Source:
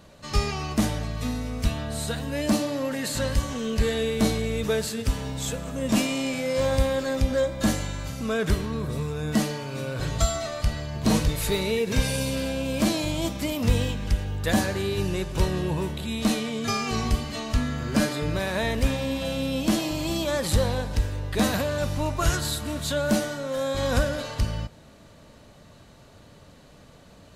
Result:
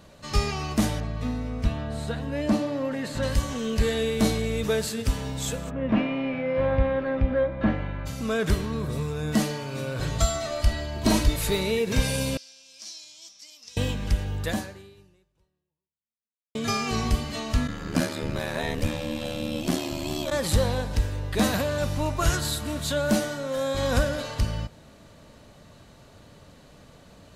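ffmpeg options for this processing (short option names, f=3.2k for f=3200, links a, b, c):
-filter_complex "[0:a]asettb=1/sr,asplit=3[a][b][c];[a]atrim=end=1.004[d];[b]atrim=start=1:end=3.23,asetpts=PTS-STARTPTS,afade=t=in:d=0.004:c=qsin,afade=t=out:st=2.226:d=0.004:c=qsin,lowpass=f=1.9k:p=1[e];[c]atrim=start=3.226[f];[d][e]acrossfade=d=0.004:c1=hsin:c2=qsin[g];[g][f]acrossfade=d=0.004:c1=qsin:c2=hsin,asplit=3[h][i][j];[h]afade=t=out:st=5.69:d=0.02[k];[i]lowpass=f=2.4k:w=0.5412,lowpass=f=2.4k:w=1.3066,afade=t=in:st=5.69:d=0.02,afade=t=out:st=8.05:d=0.02[l];[j]afade=t=in:st=8.05:d=0.02[m];[k][l][m]amix=inputs=3:normalize=0,asettb=1/sr,asplit=3[n][o][p];[n]atrim=end=10.504[q];[o]atrim=start=10.5:end=11.36,asetpts=PTS-STARTPTS,afade=t=in:d=0.004:c=qsin,afade=t=out:st=0.856:d=0.004:c=qsin,aecho=1:1:3.1:0.68,atrim=end_sample=37926[r];[p]atrim=start=11.356[s];[q][r]acrossfade=d=0.004:c1=hsin:c2=qsin[t];[t][s]acrossfade=d=0.004:c1=qsin:c2=hsin,asettb=1/sr,asplit=3[u][v][w];[u]atrim=end=12.374[x];[v]atrim=start=12.37:end=13.77,asetpts=PTS-STARTPTS,afade=t=in:d=0.004:c=qsin,afade=t=out:st=1.396:d=0.004:c=qsin,bandpass=f=5.5k:t=q:w=5.2[y];[w]atrim=start=13.766[z];[x][y]acrossfade=d=0.004:c1=hsin:c2=qsin[aa];[aa][z]acrossfade=d=0.004:c1=qsin:c2=hsin,asplit=3[ab][ac][ad];[ab]afade=t=out:st=17.67:d=0.02[ae];[ac]aeval=exprs='val(0)*sin(2*PI*38*n/s)':c=same,afade=t=in:st=17.67:d=0.02,afade=t=out:st=20.3:d=0.02[af];[ad]afade=t=in:st=20.3:d=0.02[ag];[ae][af][ag]amix=inputs=3:normalize=0,asplit=2[ah][ai];[ah]atrim=end=16.55,asetpts=PTS-STARTPTS,afade=t=out:st=14.41:d=2.14:c=exp[aj];[ai]atrim=start=16.55,asetpts=PTS-STARTPTS,afade=t=in:d=0.004:c=hsin[ak];[aj][ak]concat=n=2:v=0:a=1"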